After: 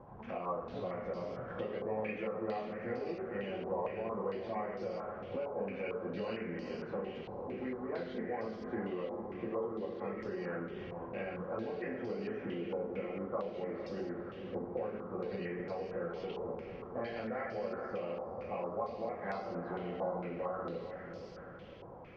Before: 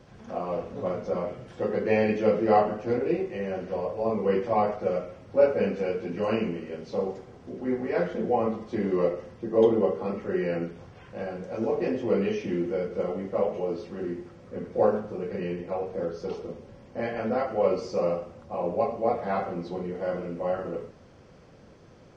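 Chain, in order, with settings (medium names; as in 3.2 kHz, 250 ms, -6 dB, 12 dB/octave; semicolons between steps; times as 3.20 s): compression 6:1, threshold -34 dBFS, peak gain reduction 18 dB; on a send: echo that smears into a reverb 455 ms, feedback 48%, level -6.5 dB; on the sum: step-sequenced low-pass 4.4 Hz 930–5000 Hz; trim -3.5 dB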